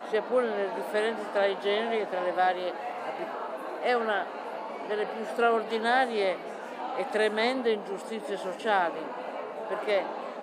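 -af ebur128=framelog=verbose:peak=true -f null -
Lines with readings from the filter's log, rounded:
Integrated loudness:
  I:         -29.4 LUFS
  Threshold: -39.4 LUFS
Loudness range:
  LRA:         2.4 LU
  Threshold: -49.4 LUFS
  LRA low:   -30.7 LUFS
  LRA high:  -28.2 LUFS
True peak:
  Peak:      -11.2 dBFS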